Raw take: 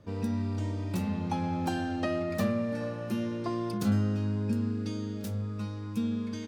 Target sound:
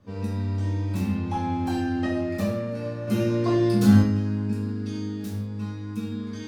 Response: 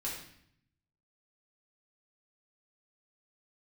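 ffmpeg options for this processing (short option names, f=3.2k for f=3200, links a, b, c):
-filter_complex "[0:a]asettb=1/sr,asplit=3[a][b][c];[a]atrim=end=3.074[d];[b]atrim=start=3.07:end=4.02,asetpts=PTS-STARTPTS,afade=t=in:d=0.004:c=qsin,afade=t=out:st=0.946:d=0.004:c=qsin,acontrast=85[e];[c]atrim=start=4.016[f];[d][e]acrossfade=d=0.004:c1=hsin:c2=qsin[g];[g][f]acrossfade=d=0.004:c1=qsin:c2=hsin[h];[1:a]atrim=start_sample=2205,afade=t=out:st=0.24:d=0.01,atrim=end_sample=11025[i];[h][i]afir=irnorm=-1:irlink=0"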